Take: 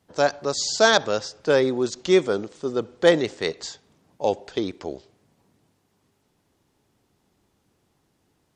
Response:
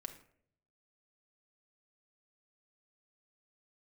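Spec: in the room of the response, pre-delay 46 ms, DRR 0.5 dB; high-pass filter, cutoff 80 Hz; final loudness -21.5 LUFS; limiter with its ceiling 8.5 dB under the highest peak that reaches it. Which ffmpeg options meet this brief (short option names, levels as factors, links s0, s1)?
-filter_complex "[0:a]highpass=80,alimiter=limit=0.282:level=0:latency=1,asplit=2[s0][s1];[1:a]atrim=start_sample=2205,adelay=46[s2];[s1][s2]afir=irnorm=-1:irlink=0,volume=1.41[s3];[s0][s3]amix=inputs=2:normalize=0,volume=1.12"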